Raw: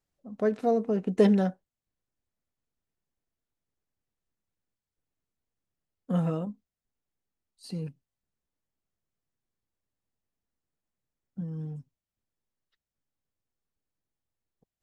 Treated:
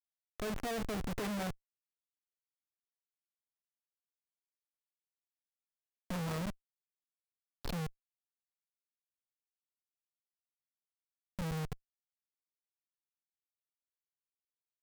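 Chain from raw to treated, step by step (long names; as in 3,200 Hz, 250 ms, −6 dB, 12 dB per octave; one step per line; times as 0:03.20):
flat-topped bell 1,800 Hz +11 dB 2.9 octaves
notch filter 870 Hz, Q 18
hum removal 133 Hz, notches 3
bit reduction 7 bits
comparator with hysteresis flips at −33.5 dBFS
level −3 dB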